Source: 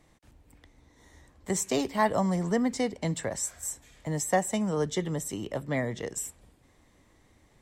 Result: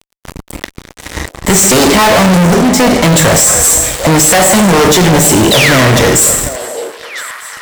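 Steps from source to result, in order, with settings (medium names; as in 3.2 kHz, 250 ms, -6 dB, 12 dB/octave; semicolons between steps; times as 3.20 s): 2.26–2.99 s: slow attack 615 ms; 5.51–5.82 s: painted sound fall 970–4100 Hz -36 dBFS; two-slope reverb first 0.69 s, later 2 s, DRR 5 dB; fuzz box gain 48 dB, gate -52 dBFS; on a send: repeats whose band climbs or falls 746 ms, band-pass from 570 Hz, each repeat 1.4 oct, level -8.5 dB; on the sum: trim +7 dB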